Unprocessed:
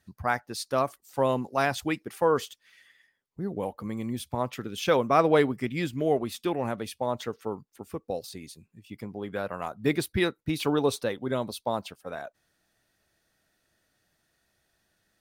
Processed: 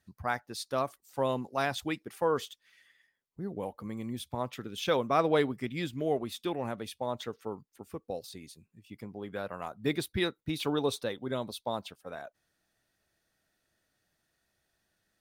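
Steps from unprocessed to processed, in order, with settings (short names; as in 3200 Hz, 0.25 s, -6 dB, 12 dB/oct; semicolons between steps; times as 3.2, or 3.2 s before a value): dynamic EQ 3600 Hz, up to +6 dB, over -54 dBFS, Q 5.4; gain -5 dB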